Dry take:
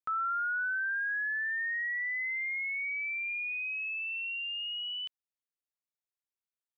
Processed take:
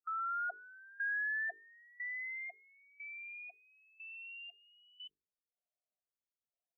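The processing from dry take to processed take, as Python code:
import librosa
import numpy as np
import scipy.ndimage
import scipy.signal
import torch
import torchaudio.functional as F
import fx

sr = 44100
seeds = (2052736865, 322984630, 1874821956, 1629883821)

y = fx.filter_lfo_lowpass(x, sr, shape='square', hz=1.0, low_hz=720.0, high_hz=1700.0, q=3.0)
y = fx.band_shelf(y, sr, hz=1600.0, db=-14.0, octaves=1.7)
y = fx.hum_notches(y, sr, base_hz=50, count=9)
y = fx.spec_topn(y, sr, count=8)
y = F.gain(torch.from_numpy(y), 1.5).numpy()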